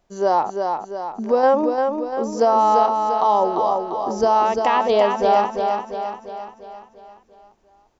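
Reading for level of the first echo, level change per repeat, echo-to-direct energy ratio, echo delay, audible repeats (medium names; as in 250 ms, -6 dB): -5.0 dB, -5.5 dB, -3.5 dB, 346 ms, 6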